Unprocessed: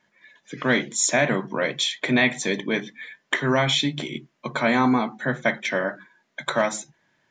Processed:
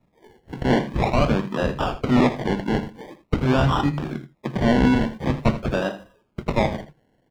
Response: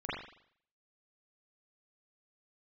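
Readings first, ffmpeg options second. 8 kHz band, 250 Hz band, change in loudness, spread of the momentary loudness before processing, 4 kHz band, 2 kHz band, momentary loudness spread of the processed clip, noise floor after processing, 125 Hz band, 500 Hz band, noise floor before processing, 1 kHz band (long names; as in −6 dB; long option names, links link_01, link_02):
below −15 dB, +4.0 dB, +1.0 dB, 13 LU, −7.5 dB, −6.5 dB, 13 LU, −66 dBFS, +8.0 dB, +1.0 dB, −70 dBFS, +2.0 dB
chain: -filter_complex "[0:a]acrusher=samples=28:mix=1:aa=0.000001:lfo=1:lforange=16.8:lforate=0.46,bass=frequency=250:gain=6,treble=frequency=4000:gain=-8,acrossover=split=6400[link_01][link_02];[link_02]acompressor=threshold=-57dB:ratio=4:attack=1:release=60[link_03];[link_01][link_03]amix=inputs=2:normalize=0,asplit=2[link_04][link_05];[link_05]aecho=0:1:81:0.211[link_06];[link_04][link_06]amix=inputs=2:normalize=0"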